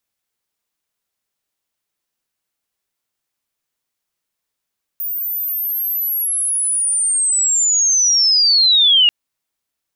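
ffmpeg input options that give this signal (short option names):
-f lavfi -i "aevalsrc='pow(10,(-20+12*t/4.09)/20)*sin(2*PI*(15000*t-12200*t*t/(2*4.09)))':d=4.09:s=44100"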